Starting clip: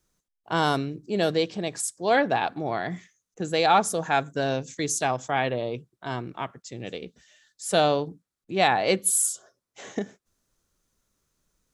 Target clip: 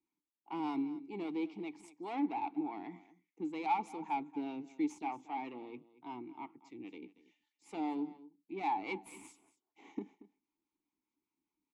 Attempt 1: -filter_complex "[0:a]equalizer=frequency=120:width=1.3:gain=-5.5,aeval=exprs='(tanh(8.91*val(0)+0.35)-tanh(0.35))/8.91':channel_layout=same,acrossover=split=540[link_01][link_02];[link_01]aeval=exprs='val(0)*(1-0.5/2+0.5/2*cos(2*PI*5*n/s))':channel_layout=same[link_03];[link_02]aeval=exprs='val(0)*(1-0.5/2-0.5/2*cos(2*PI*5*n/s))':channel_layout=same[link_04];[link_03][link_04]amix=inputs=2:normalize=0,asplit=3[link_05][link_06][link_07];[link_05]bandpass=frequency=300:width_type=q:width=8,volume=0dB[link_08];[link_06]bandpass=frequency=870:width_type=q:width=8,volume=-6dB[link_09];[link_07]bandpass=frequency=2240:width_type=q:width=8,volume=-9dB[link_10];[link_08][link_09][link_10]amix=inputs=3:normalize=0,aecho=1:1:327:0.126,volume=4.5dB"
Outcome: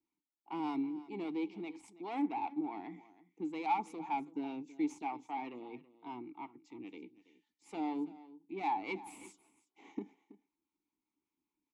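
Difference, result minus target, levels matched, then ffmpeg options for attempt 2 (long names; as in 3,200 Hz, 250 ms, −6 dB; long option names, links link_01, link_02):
echo 95 ms late
-filter_complex "[0:a]equalizer=frequency=120:width=1.3:gain=-5.5,aeval=exprs='(tanh(8.91*val(0)+0.35)-tanh(0.35))/8.91':channel_layout=same,acrossover=split=540[link_01][link_02];[link_01]aeval=exprs='val(0)*(1-0.5/2+0.5/2*cos(2*PI*5*n/s))':channel_layout=same[link_03];[link_02]aeval=exprs='val(0)*(1-0.5/2-0.5/2*cos(2*PI*5*n/s))':channel_layout=same[link_04];[link_03][link_04]amix=inputs=2:normalize=0,asplit=3[link_05][link_06][link_07];[link_05]bandpass=frequency=300:width_type=q:width=8,volume=0dB[link_08];[link_06]bandpass=frequency=870:width_type=q:width=8,volume=-6dB[link_09];[link_07]bandpass=frequency=2240:width_type=q:width=8,volume=-9dB[link_10];[link_08][link_09][link_10]amix=inputs=3:normalize=0,aecho=1:1:232:0.126,volume=4.5dB"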